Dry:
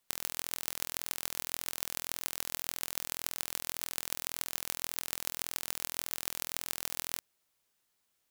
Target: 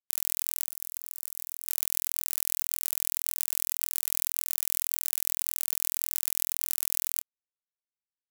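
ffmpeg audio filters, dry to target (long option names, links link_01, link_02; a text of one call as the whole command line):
ffmpeg -i in.wav -filter_complex "[0:a]asplit=3[link_01][link_02][link_03];[link_01]afade=type=out:start_time=0.64:duration=0.02[link_04];[link_02]acompressor=threshold=-38dB:ratio=20,afade=type=in:start_time=0.64:duration=0.02,afade=type=out:start_time=1.67:duration=0.02[link_05];[link_03]afade=type=in:start_time=1.67:duration=0.02[link_06];[link_04][link_05][link_06]amix=inputs=3:normalize=0,asettb=1/sr,asplit=3[link_07][link_08][link_09];[link_07]atrim=end=4.544[link_10];[link_08]atrim=start=4.54:end=5.26,asetpts=PTS-STARTPTS,afade=type=in:duration=0.004:curve=qsin,afade=type=out:start_time=0.716:duration=0.004:curve=qsin,highpass=430[link_11];[link_09]atrim=start=5.256[link_12];[link_10][link_11]acrossfade=duration=0.004:curve1=hsin:curve2=qsin[link_13];[link_13][link_12]acrossfade=duration=0.004:curve1=qsin:curve2=hsin,asoftclip=type=tanh:threshold=-10dB,aexciter=amount=3.5:drive=3.5:freq=3100,aeval=exprs='sgn(val(0))*max(abs(val(0))-0.0473,0)':channel_layout=same,asplit=2[link_14][link_15];[link_15]adelay=26,volume=-9dB[link_16];[link_14][link_16]amix=inputs=2:normalize=0,volume=-1dB" out.wav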